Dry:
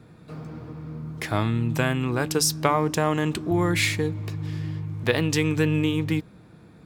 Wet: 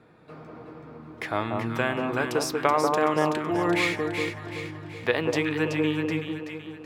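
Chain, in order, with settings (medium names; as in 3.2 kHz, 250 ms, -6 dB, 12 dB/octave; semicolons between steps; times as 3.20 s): tone controls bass -13 dB, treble -12 dB; echo whose repeats swap between lows and highs 189 ms, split 1.2 kHz, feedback 67%, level -2.5 dB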